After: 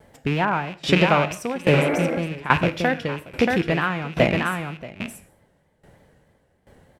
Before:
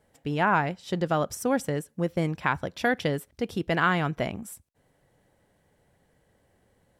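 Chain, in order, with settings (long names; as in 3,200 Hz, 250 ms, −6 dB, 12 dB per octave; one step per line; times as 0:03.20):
loose part that buzzes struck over −44 dBFS, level −23 dBFS
0:00.81–0:01.53: parametric band 2,600 Hz +5.5 dB 2.9 octaves
on a send: single-tap delay 630 ms −7.5 dB
0:01.77–0:02.14: on the sum: healed spectral selection 230–2,300 Hz both
in parallel at 0 dB: downward compressor, threshold −32 dBFS, peak gain reduction 13.5 dB
on the sum: high-shelf EQ 4,500 Hz −7 dB
reverb whose tail is shaped and stops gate 240 ms falling, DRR 11.5 dB
pitch vibrato 3.2 Hz 68 cents
tremolo with a ramp in dB decaying 1.2 Hz, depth 18 dB
level +9 dB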